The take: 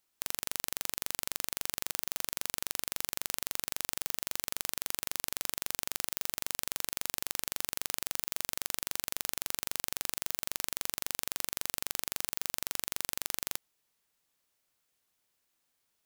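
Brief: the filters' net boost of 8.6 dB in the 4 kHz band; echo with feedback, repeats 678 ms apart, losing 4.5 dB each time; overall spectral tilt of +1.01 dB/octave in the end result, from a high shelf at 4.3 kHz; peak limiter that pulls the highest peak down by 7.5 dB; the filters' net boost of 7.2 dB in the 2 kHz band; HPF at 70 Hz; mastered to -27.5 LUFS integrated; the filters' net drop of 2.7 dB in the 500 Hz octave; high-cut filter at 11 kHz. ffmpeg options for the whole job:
-af "highpass=70,lowpass=11000,equalizer=f=500:t=o:g=-4,equalizer=f=2000:t=o:g=6,equalizer=f=4000:t=o:g=5.5,highshelf=f=4300:g=6.5,alimiter=limit=0.282:level=0:latency=1,aecho=1:1:678|1356|2034|2712|3390|4068|4746|5424|6102:0.596|0.357|0.214|0.129|0.0772|0.0463|0.0278|0.0167|0.01,volume=2.82"

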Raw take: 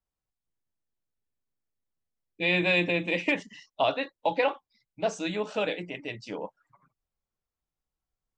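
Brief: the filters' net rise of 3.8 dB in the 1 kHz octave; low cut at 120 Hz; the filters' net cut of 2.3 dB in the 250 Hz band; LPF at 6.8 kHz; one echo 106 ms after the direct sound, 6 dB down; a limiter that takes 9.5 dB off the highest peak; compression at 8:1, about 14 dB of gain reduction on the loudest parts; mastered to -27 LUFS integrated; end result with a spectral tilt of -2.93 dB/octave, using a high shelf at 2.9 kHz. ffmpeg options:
-af "highpass=120,lowpass=6800,equalizer=f=250:t=o:g=-3.5,equalizer=f=1000:t=o:g=6,highshelf=f=2900:g=-5.5,acompressor=threshold=0.0224:ratio=8,alimiter=level_in=1.58:limit=0.0631:level=0:latency=1,volume=0.631,aecho=1:1:106:0.501,volume=4.22"

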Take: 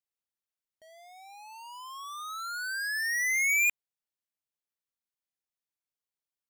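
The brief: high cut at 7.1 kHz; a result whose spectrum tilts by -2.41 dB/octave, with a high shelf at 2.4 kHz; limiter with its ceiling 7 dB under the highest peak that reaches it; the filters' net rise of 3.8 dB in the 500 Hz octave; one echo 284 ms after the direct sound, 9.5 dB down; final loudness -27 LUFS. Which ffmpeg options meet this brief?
-af "lowpass=7100,equalizer=f=500:t=o:g=7,highshelf=f=2400:g=-5.5,alimiter=level_in=2.24:limit=0.0631:level=0:latency=1,volume=0.447,aecho=1:1:284:0.335,volume=2.37"

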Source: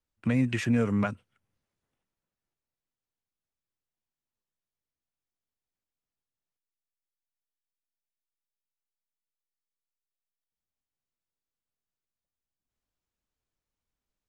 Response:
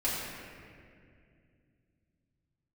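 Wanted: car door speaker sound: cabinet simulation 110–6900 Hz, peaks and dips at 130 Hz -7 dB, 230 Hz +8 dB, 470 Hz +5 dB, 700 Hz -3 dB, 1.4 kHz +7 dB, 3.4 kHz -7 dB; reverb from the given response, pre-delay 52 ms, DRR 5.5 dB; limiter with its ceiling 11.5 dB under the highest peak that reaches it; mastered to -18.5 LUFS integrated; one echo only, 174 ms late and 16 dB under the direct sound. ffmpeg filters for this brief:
-filter_complex "[0:a]alimiter=level_in=1.19:limit=0.0631:level=0:latency=1,volume=0.841,aecho=1:1:174:0.158,asplit=2[s0][s1];[1:a]atrim=start_sample=2205,adelay=52[s2];[s1][s2]afir=irnorm=-1:irlink=0,volume=0.2[s3];[s0][s3]amix=inputs=2:normalize=0,highpass=110,equalizer=f=130:t=q:w=4:g=-7,equalizer=f=230:t=q:w=4:g=8,equalizer=f=470:t=q:w=4:g=5,equalizer=f=700:t=q:w=4:g=-3,equalizer=f=1400:t=q:w=4:g=7,equalizer=f=3400:t=q:w=4:g=-7,lowpass=f=6900:w=0.5412,lowpass=f=6900:w=1.3066,volume=4.73"

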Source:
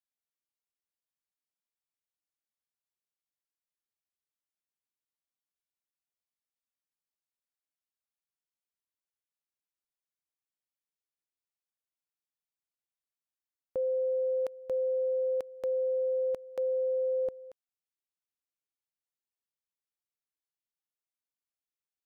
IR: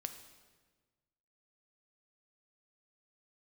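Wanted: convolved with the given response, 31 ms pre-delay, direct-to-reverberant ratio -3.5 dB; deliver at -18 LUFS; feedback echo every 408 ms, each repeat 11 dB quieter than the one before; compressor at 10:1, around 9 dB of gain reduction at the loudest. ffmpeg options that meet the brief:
-filter_complex "[0:a]acompressor=threshold=0.0141:ratio=10,aecho=1:1:408|816|1224:0.282|0.0789|0.0221,asplit=2[s0][s1];[1:a]atrim=start_sample=2205,adelay=31[s2];[s1][s2]afir=irnorm=-1:irlink=0,volume=1.88[s3];[s0][s3]amix=inputs=2:normalize=0,volume=7.08"

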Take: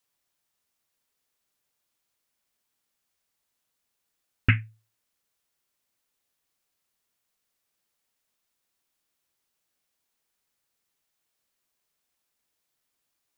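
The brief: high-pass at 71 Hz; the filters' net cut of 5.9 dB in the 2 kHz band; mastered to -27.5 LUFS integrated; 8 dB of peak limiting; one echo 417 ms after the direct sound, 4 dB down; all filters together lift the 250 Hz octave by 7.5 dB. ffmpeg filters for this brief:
-af "highpass=71,equalizer=f=250:t=o:g=8.5,equalizer=f=2000:t=o:g=-7.5,alimiter=limit=0.211:level=0:latency=1,aecho=1:1:417:0.631,volume=2"

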